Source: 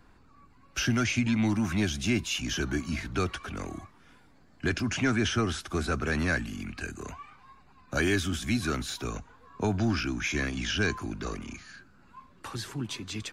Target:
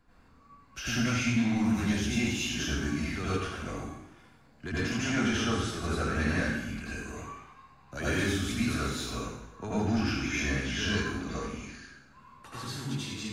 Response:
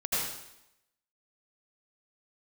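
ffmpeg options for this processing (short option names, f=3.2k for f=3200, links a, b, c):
-filter_complex "[0:a]asoftclip=type=tanh:threshold=-19dB[a];[1:a]atrim=start_sample=2205[b];[a][b]afir=irnorm=-1:irlink=0,volume=-8dB"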